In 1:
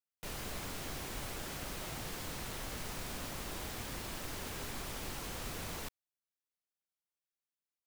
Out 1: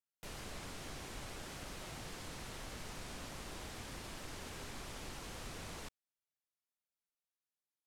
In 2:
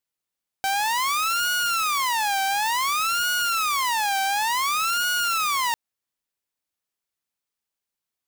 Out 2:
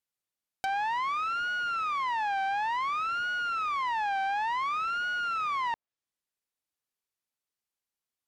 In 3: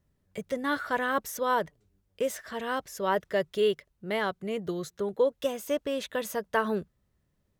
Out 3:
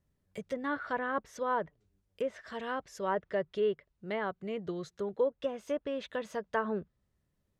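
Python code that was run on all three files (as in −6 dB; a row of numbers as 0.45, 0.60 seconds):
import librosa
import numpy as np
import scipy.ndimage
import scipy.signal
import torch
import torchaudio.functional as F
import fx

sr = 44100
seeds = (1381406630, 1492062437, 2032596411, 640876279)

y = fx.env_lowpass_down(x, sr, base_hz=1900.0, full_db=-25.0)
y = y * librosa.db_to_amplitude(-4.5)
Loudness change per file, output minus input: −5.5, −7.5, −5.0 LU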